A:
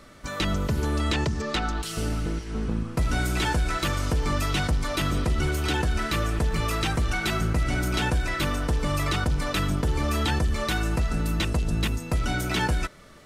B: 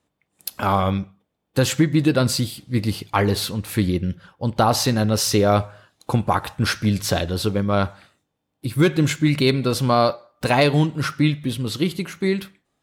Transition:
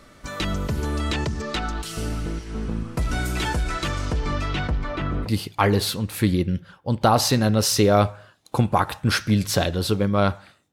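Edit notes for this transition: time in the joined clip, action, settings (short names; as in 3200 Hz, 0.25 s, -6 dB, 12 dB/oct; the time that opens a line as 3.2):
A
3.63–5.3 LPF 12000 Hz -> 1400 Hz
5.26 switch to B from 2.81 s, crossfade 0.08 s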